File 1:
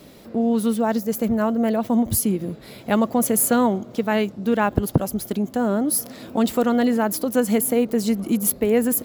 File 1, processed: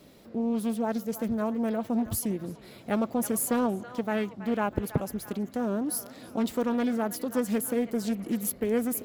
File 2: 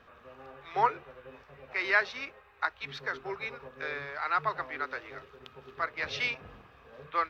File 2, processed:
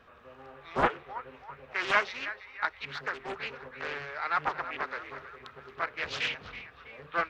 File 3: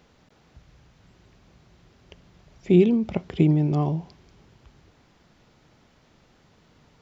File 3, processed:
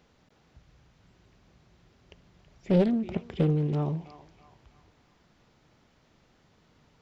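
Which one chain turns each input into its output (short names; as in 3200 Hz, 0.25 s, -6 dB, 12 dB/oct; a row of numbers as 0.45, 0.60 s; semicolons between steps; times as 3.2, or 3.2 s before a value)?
narrowing echo 0.326 s, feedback 56%, band-pass 1600 Hz, level -12 dB; Doppler distortion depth 0.68 ms; normalise peaks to -12 dBFS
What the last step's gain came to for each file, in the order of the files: -8.5, -0.5, -5.0 dB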